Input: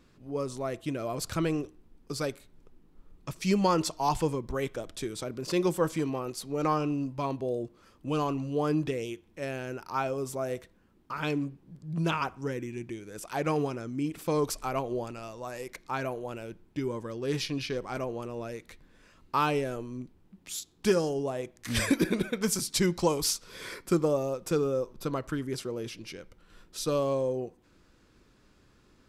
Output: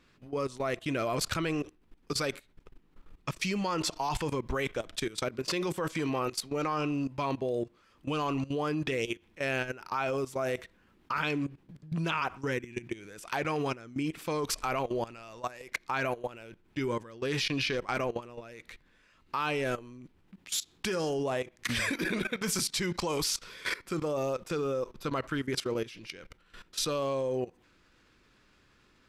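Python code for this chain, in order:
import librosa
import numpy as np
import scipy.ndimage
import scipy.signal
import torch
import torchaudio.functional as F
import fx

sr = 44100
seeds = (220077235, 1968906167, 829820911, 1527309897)

y = fx.peak_eq(x, sr, hz=2300.0, db=9.0, octaves=2.4)
y = fx.level_steps(y, sr, step_db=17)
y = y * 10.0 ** (3.5 / 20.0)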